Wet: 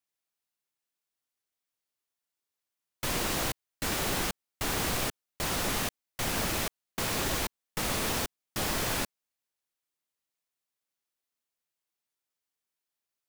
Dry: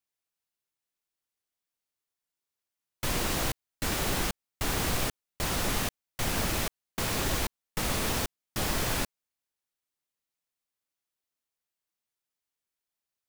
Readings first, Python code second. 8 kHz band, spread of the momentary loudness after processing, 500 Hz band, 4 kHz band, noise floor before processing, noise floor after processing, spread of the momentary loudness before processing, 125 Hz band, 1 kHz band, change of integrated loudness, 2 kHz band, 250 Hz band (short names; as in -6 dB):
0.0 dB, 6 LU, -0.5 dB, 0.0 dB, under -85 dBFS, under -85 dBFS, 6 LU, -3.0 dB, 0.0 dB, -0.5 dB, 0.0 dB, -1.0 dB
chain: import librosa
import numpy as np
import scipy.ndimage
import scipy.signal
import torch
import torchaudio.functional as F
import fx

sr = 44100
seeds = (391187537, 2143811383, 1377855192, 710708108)

y = fx.low_shelf(x, sr, hz=120.0, db=-6.0)